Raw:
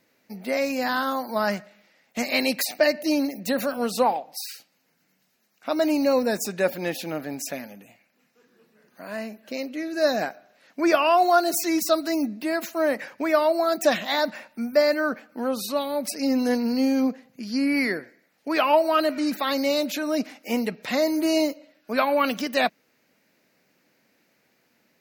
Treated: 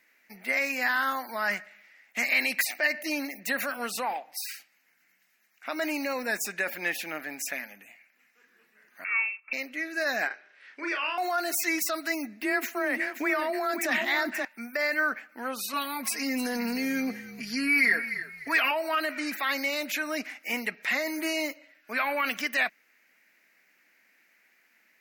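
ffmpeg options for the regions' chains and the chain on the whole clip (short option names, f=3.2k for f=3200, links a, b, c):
-filter_complex "[0:a]asettb=1/sr,asplit=3[a][b][c];[a]atrim=end=9.044[d];[b]atrim=start=9.04:end=9.53,asetpts=PTS-STARTPTS,afade=t=in:d=0.004:c=qsin,afade=t=out:st=0.486:d=0.004:c=qsin,agate=range=-13dB:threshold=-51dB:ratio=16:release=100:detection=peak,lowpass=f=2.5k:t=q:w=0.5098,lowpass=f=2.5k:t=q:w=0.6013,lowpass=f=2.5k:t=q:w=0.9,lowpass=f=2.5k:t=q:w=2.563,afreqshift=-2900[e];[c]atrim=start=9.526[f];[d][e]acrossfade=d=0.004:c1=hsin:c2=qsin[g];[g][f]acrossfade=d=0.004:c1=qsin:c2=hsin,asettb=1/sr,asplit=3[h][i][j];[h]atrim=end=10.274[k];[i]atrim=start=10.27:end=11.18,asetpts=PTS-STARTPTS,afade=t=in:d=0.004:c=qsin,afade=t=out:st=0.906:d=0.004:c=qsin,acompressor=threshold=-27dB:ratio=4:attack=3.2:release=140:knee=1:detection=peak,highpass=f=220:w=0.5412,highpass=f=220:w=1.3066,equalizer=f=260:t=q:w=4:g=-7,equalizer=f=410:t=q:w=4:g=7,equalizer=f=690:t=q:w=4:g=-9,equalizer=f=3.2k:t=q:w=4:g=4,equalizer=f=6.9k:t=q:w=4:g=-10,lowpass=f=8.1k:w=0.5412,lowpass=f=8.1k:w=1.3066,asplit=2[l][m];[m]adelay=35,volume=-4dB[n];[l][n]amix=inputs=2:normalize=0,atrim=end_sample=40131[o];[j]atrim=start=11.176[p];[k][o]acrossfade=d=0.004:c1=hsin:c2=qsin[q];[q][p]acrossfade=d=0.004:c1=qsin:c2=hsin,asettb=1/sr,asplit=3[r][s][t];[r]atrim=end=12.414[u];[s]atrim=start=12.41:end=14.45,asetpts=PTS-STARTPTS,afade=t=in:d=0.004:c=qsin,afade=t=out:st=2.036:d=0.004:c=qsin,equalizer=f=240:t=o:w=1.2:g=10.5,aecho=1:1:529:0.316,atrim=end_sample=89964,afreqshift=19[v];[t]atrim=start=14.446[w];[u][v]acrossfade=d=0.004:c1=hsin:c2=qsin[x];[x][w]acrossfade=d=0.004:c1=qsin:c2=hsin,asettb=1/sr,asplit=3[y][z][aa];[y]atrim=end=15.734[ab];[z]atrim=start=15.73:end=18.71,asetpts=PTS-STARTPTS,afade=t=in:d=0.004:c=qsin,afade=t=out:st=2.976:d=0.004:c=qsin,highshelf=f=5.2k:g=4,aecho=1:1:4.3:0.99,atrim=end_sample=131418,asplit=4[ac][ad][ae][af];[ad]adelay=299,afreqshift=-56,volume=-16dB[ag];[ae]adelay=598,afreqshift=-112,volume=-26.2dB[ah];[af]adelay=897,afreqshift=-168,volume=-36.3dB[ai];[ac][ag][ah][ai]amix=inputs=4:normalize=0,atrim=end_sample=131418[aj];[aa]atrim=start=18.706[ak];[ab][aj]acrossfade=d=0.004:c1=hsin:c2=qsin[al];[al][ak]acrossfade=d=0.004:c1=qsin:c2=hsin,equalizer=f=82:t=o:w=2.4:g=-14,alimiter=limit=-17.5dB:level=0:latency=1:release=22,equalizer=f=125:t=o:w=1:g=-9,equalizer=f=250:t=o:w=1:g=-3,equalizer=f=500:t=o:w=1:g=-8,equalizer=f=1k:t=o:w=1:g=-3,equalizer=f=2k:t=o:w=1:g=10,equalizer=f=4k:t=o:w=1:g=-6"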